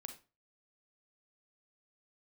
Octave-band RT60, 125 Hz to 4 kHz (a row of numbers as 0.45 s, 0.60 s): 0.40 s, 0.35 s, 0.35 s, 0.30 s, 0.30 s, 0.25 s